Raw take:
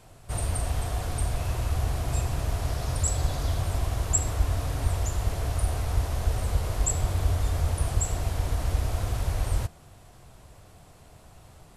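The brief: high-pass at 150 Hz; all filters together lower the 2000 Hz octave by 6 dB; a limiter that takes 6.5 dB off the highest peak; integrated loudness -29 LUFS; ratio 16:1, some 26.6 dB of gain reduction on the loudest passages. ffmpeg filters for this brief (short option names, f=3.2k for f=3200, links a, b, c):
-af "highpass=150,equalizer=f=2k:t=o:g=-8,acompressor=threshold=-47dB:ratio=16,volume=23.5dB,alimiter=limit=-19dB:level=0:latency=1"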